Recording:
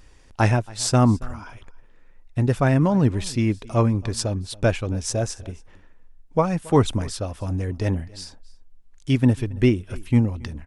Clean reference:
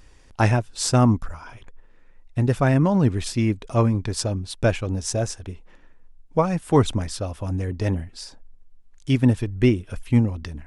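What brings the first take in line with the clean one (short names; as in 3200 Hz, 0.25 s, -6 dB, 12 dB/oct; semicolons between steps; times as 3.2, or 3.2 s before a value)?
inverse comb 0.276 s -22.5 dB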